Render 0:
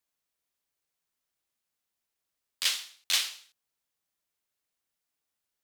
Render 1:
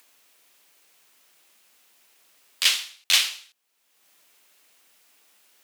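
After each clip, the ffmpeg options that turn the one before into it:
-filter_complex "[0:a]asplit=2[a][b];[b]acompressor=mode=upward:threshold=-39dB:ratio=2.5,volume=-3dB[c];[a][c]amix=inputs=2:normalize=0,highpass=250,equalizer=f=2.6k:w=2:g=4,volume=1.5dB"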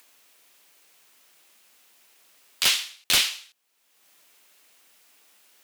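-af "aeval=exprs='0.2*(abs(mod(val(0)/0.2+3,4)-2)-1)':c=same,volume=1.5dB"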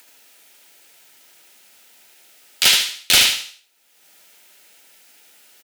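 -filter_complex "[0:a]asuperstop=centerf=1100:order=20:qfactor=5.5,asplit=2[a][b];[b]aecho=0:1:76|152|228|304:0.562|0.163|0.0473|0.0137[c];[a][c]amix=inputs=2:normalize=0,volume=6.5dB"

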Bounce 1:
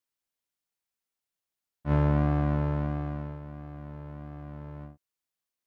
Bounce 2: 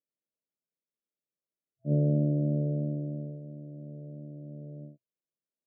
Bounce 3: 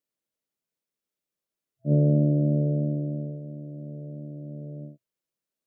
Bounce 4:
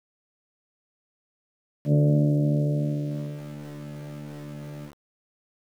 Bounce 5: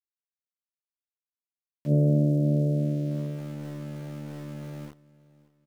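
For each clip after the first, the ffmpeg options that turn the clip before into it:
-af "afftfilt=real='re*between(b*sr/4096,120,660)':imag='im*between(b*sr/4096,120,660)':win_size=4096:overlap=0.75"
-af "acontrast=26"
-af "aeval=exprs='val(0)*gte(abs(val(0)),0.00891)':c=same"
-af "aecho=1:1:572|1144|1716:0.0708|0.029|0.0119,volume=-1dB"

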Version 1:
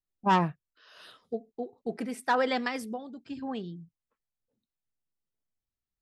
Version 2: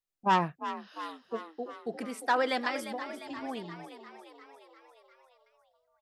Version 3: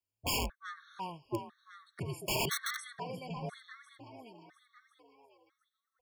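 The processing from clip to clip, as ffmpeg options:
-filter_complex "[0:a]lowshelf=f=270:g=-8,asplit=2[a][b];[b]asplit=8[c][d][e][f][g][h][i][j];[c]adelay=350,afreqshift=53,volume=-11.5dB[k];[d]adelay=700,afreqshift=106,volume=-15.5dB[l];[e]adelay=1050,afreqshift=159,volume=-19.5dB[m];[f]adelay=1400,afreqshift=212,volume=-23.5dB[n];[g]adelay=1750,afreqshift=265,volume=-27.6dB[o];[h]adelay=2100,afreqshift=318,volume=-31.6dB[p];[i]adelay=2450,afreqshift=371,volume=-35.6dB[q];[j]adelay=2800,afreqshift=424,volume=-39.6dB[r];[k][l][m][n][o][p][q][r]amix=inputs=8:normalize=0[s];[a][s]amix=inputs=2:normalize=0"
-af "afreqshift=-110,aeval=exprs='(mod(16.8*val(0)+1,2)-1)/16.8':c=same,afftfilt=real='re*gt(sin(2*PI*1*pts/sr)*(1-2*mod(floor(b*sr/1024/1100),2)),0)':imag='im*gt(sin(2*PI*1*pts/sr)*(1-2*mod(floor(b*sr/1024/1100),2)),0)':win_size=1024:overlap=0.75"

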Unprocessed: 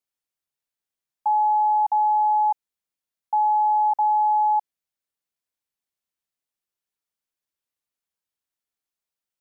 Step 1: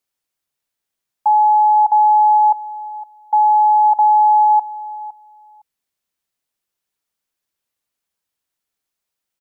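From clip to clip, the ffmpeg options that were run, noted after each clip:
-af "aecho=1:1:511|1022:0.133|0.0213,volume=7.5dB"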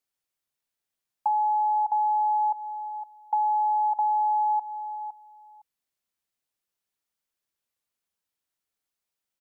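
-af "acompressor=threshold=-17dB:ratio=6,volume=-5.5dB"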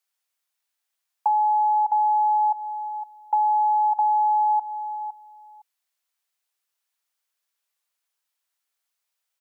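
-af "highpass=730,volume=5.5dB"

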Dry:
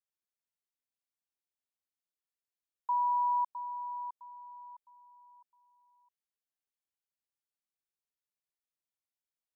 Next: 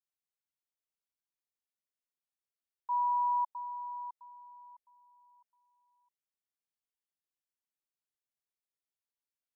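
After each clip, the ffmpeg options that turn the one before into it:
-af "adynamicequalizer=threshold=0.00794:dfrequency=890:dqfactor=2.4:tfrequency=890:tqfactor=2.4:attack=5:release=100:ratio=0.375:range=3:mode=boostabove:tftype=bell,volume=-5.5dB"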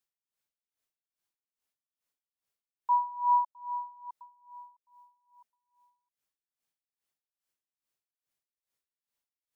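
-af "aeval=exprs='val(0)*pow(10,-21*(0.5-0.5*cos(2*PI*2.4*n/s))/20)':c=same,volume=8dB"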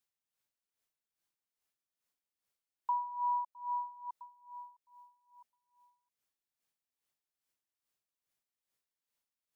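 -af "acompressor=threshold=-31dB:ratio=6"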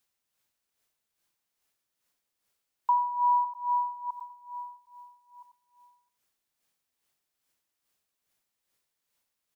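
-af "aecho=1:1:90:0.335,volume=8.5dB"

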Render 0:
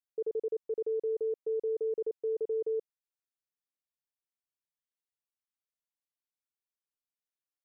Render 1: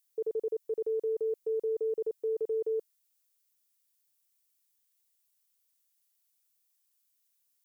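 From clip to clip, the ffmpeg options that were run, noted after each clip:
-af "crystalizer=i=6.5:c=0"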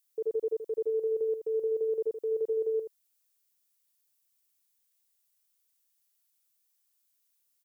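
-af "aecho=1:1:77:0.398"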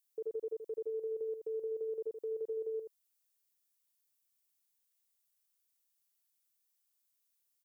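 -af "acompressor=threshold=-33dB:ratio=2,volume=-5dB"

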